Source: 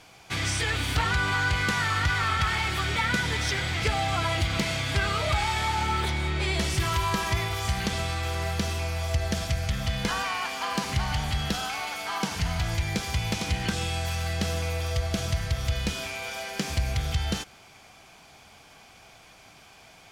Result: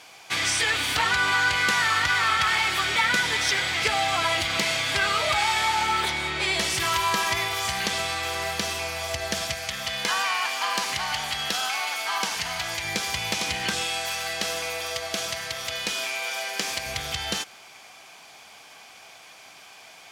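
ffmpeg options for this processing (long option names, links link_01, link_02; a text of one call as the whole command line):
ffmpeg -i in.wav -filter_complex "[0:a]asettb=1/sr,asplit=3[link_01][link_02][link_03];[link_01]atrim=end=9.544[link_04];[link_02]atrim=start=9.54:end=12.84,asetpts=PTS-STARTPTS,afade=type=in:duration=0.004:curve=qsin,afade=type=out:start_time=3.296:duration=0.004:curve=qsin,lowshelf=frequency=360:gain=-6.5[link_05];[link_03]atrim=start=12.836[link_06];[link_04][link_05]acrossfade=duration=0.004:curve1=hsin:curve2=qsin[link_07];[link_07][link_06]acrossfade=duration=0.004:curve1=qsin:curve2=hsin,asettb=1/sr,asplit=3[link_08][link_09][link_10];[link_08]atrim=end=13.814[link_11];[link_09]atrim=start=13.81:end=16.86,asetpts=PTS-STARTPTS,afade=type=in:duration=0.004:curve=qsin,afade=type=out:start_time=3.046:duration=0.004:curve=qsin,highpass=frequency=260:poles=1[link_12];[link_10]atrim=start=16.856[link_13];[link_11][link_12]acrossfade=duration=0.004:curve1=hsin:curve2=qsin[link_14];[link_14][link_13]acrossfade=duration=0.004:curve1=qsin:curve2=hsin,highpass=frequency=730:poles=1,bandreject=frequency=1400:width=21,volume=6dB" out.wav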